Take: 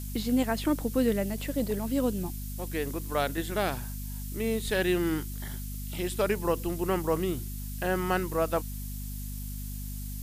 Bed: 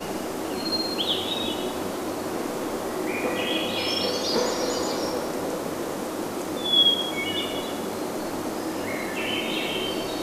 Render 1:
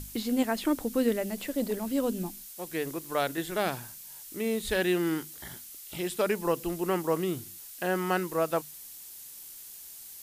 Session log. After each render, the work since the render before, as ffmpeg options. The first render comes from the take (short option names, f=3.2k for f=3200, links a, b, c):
-af "bandreject=f=50:t=h:w=6,bandreject=f=100:t=h:w=6,bandreject=f=150:t=h:w=6,bandreject=f=200:t=h:w=6,bandreject=f=250:t=h:w=6"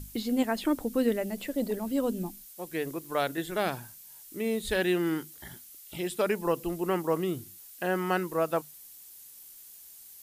-af "afftdn=nr=6:nf=-46"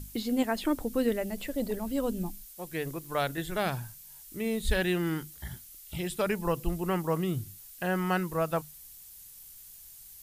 -af "asubboost=boost=6.5:cutoff=120"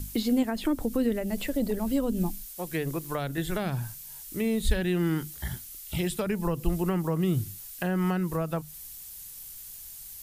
-filter_complex "[0:a]asplit=2[a][b];[b]alimiter=limit=-22.5dB:level=0:latency=1:release=139,volume=0.5dB[c];[a][c]amix=inputs=2:normalize=0,acrossover=split=330[d][e];[e]acompressor=threshold=-31dB:ratio=6[f];[d][f]amix=inputs=2:normalize=0"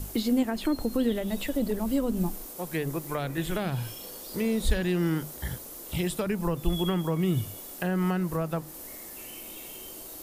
-filter_complex "[1:a]volume=-20.5dB[a];[0:a][a]amix=inputs=2:normalize=0"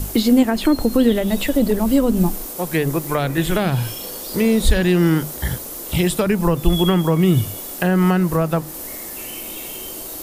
-af "volume=11dB,alimiter=limit=-3dB:level=0:latency=1"